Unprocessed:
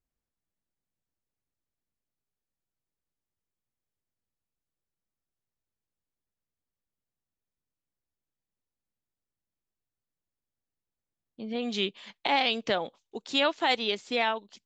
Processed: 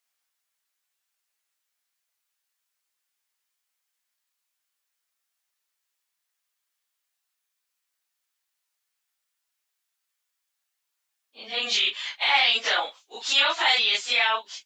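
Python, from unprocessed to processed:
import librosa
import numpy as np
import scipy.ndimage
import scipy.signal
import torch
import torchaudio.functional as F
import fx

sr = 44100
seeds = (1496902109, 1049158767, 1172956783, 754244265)

p1 = fx.phase_scramble(x, sr, seeds[0], window_ms=100)
p2 = scipy.signal.sosfilt(scipy.signal.butter(2, 1300.0, 'highpass', fs=sr, output='sos'), p1)
p3 = fx.over_compress(p2, sr, threshold_db=-37.0, ratio=-0.5)
p4 = p2 + (p3 * 10.0 ** (-3.0 / 20.0))
y = p4 * 10.0 ** (7.5 / 20.0)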